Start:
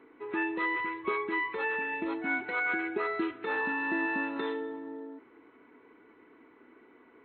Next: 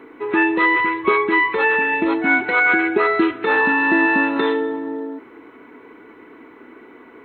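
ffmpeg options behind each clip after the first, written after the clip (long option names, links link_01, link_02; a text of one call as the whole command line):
ffmpeg -i in.wav -af "acontrast=70,volume=8dB" out.wav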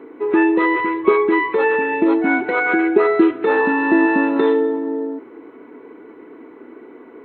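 ffmpeg -i in.wav -af "equalizer=frequency=400:width=0.49:gain=12,volume=-7dB" out.wav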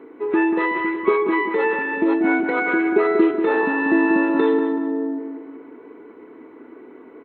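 ffmpeg -i in.wav -filter_complex "[0:a]asplit=2[link_01][link_02];[link_02]adelay=188,lowpass=frequency=1900:poles=1,volume=-6dB,asplit=2[link_03][link_04];[link_04]adelay=188,lowpass=frequency=1900:poles=1,volume=0.46,asplit=2[link_05][link_06];[link_06]adelay=188,lowpass=frequency=1900:poles=1,volume=0.46,asplit=2[link_07][link_08];[link_08]adelay=188,lowpass=frequency=1900:poles=1,volume=0.46,asplit=2[link_09][link_10];[link_10]adelay=188,lowpass=frequency=1900:poles=1,volume=0.46,asplit=2[link_11][link_12];[link_12]adelay=188,lowpass=frequency=1900:poles=1,volume=0.46[link_13];[link_01][link_03][link_05][link_07][link_09][link_11][link_13]amix=inputs=7:normalize=0,volume=-3.5dB" out.wav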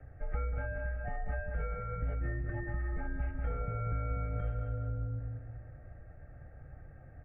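ffmpeg -i in.wav -filter_complex "[0:a]acrossover=split=260|710[link_01][link_02][link_03];[link_01]acompressor=threshold=-33dB:ratio=4[link_04];[link_02]acompressor=threshold=-30dB:ratio=4[link_05];[link_03]acompressor=threshold=-37dB:ratio=4[link_06];[link_04][link_05][link_06]amix=inputs=3:normalize=0,asuperstop=centerf=1400:order=12:qfactor=5.1,highpass=frequency=180:width_type=q:width=0.5412,highpass=frequency=180:width_type=q:width=1.307,lowpass=frequency=2700:width_type=q:width=0.5176,lowpass=frequency=2700:width_type=q:width=0.7071,lowpass=frequency=2700:width_type=q:width=1.932,afreqshift=-390,volume=-7.5dB" out.wav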